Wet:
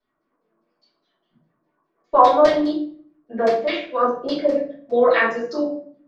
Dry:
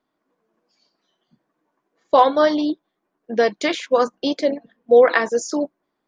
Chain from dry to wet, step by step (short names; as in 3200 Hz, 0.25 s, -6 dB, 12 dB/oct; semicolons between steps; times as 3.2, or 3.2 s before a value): 3.55–4.02 bell 140 Hz -12.5 dB 2.4 oct; LFO low-pass saw down 4.9 Hz 590–5200 Hz; shoebox room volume 55 m³, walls mixed, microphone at 2.8 m; gain -15 dB